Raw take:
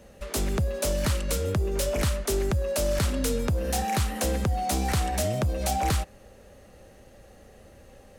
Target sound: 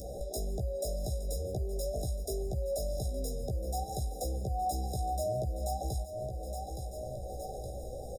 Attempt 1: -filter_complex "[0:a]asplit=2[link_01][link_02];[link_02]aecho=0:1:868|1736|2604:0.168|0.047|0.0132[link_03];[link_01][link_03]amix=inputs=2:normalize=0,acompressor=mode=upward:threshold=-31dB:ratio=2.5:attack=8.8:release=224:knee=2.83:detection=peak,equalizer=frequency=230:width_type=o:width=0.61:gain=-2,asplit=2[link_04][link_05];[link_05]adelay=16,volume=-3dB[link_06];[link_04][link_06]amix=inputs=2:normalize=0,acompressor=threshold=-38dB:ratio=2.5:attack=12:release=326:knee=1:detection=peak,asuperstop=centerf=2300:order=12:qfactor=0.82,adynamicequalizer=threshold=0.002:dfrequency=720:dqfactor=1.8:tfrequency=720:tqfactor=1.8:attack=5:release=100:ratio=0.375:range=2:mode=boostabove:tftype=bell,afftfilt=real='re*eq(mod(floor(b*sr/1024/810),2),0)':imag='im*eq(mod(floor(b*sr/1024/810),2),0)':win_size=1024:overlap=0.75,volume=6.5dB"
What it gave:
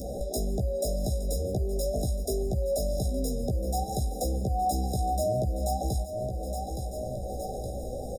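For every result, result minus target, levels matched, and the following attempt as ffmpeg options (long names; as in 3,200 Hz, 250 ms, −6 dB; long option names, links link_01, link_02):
downward compressor: peak gain reduction −5 dB; 250 Hz band +4.0 dB
-filter_complex "[0:a]asplit=2[link_01][link_02];[link_02]aecho=0:1:868|1736|2604:0.168|0.047|0.0132[link_03];[link_01][link_03]amix=inputs=2:normalize=0,acompressor=mode=upward:threshold=-31dB:ratio=2.5:attack=8.8:release=224:knee=2.83:detection=peak,equalizer=frequency=230:width_type=o:width=0.61:gain=-2,asplit=2[link_04][link_05];[link_05]adelay=16,volume=-3dB[link_06];[link_04][link_06]amix=inputs=2:normalize=0,acompressor=threshold=-47dB:ratio=2.5:attack=12:release=326:knee=1:detection=peak,asuperstop=centerf=2300:order=12:qfactor=0.82,adynamicequalizer=threshold=0.002:dfrequency=720:dqfactor=1.8:tfrequency=720:tqfactor=1.8:attack=5:release=100:ratio=0.375:range=2:mode=boostabove:tftype=bell,afftfilt=real='re*eq(mod(floor(b*sr/1024/810),2),0)':imag='im*eq(mod(floor(b*sr/1024/810),2),0)':win_size=1024:overlap=0.75,volume=6.5dB"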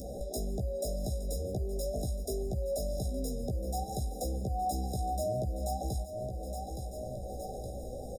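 250 Hz band +4.0 dB
-filter_complex "[0:a]asplit=2[link_01][link_02];[link_02]aecho=0:1:868|1736|2604:0.168|0.047|0.0132[link_03];[link_01][link_03]amix=inputs=2:normalize=0,acompressor=mode=upward:threshold=-31dB:ratio=2.5:attack=8.8:release=224:knee=2.83:detection=peak,equalizer=frequency=230:width_type=o:width=0.61:gain=-11.5,asplit=2[link_04][link_05];[link_05]adelay=16,volume=-3dB[link_06];[link_04][link_06]amix=inputs=2:normalize=0,acompressor=threshold=-47dB:ratio=2.5:attack=12:release=326:knee=1:detection=peak,asuperstop=centerf=2300:order=12:qfactor=0.82,adynamicequalizer=threshold=0.002:dfrequency=720:dqfactor=1.8:tfrequency=720:tqfactor=1.8:attack=5:release=100:ratio=0.375:range=2:mode=boostabove:tftype=bell,afftfilt=real='re*eq(mod(floor(b*sr/1024/810),2),0)':imag='im*eq(mod(floor(b*sr/1024/810),2),0)':win_size=1024:overlap=0.75,volume=6.5dB"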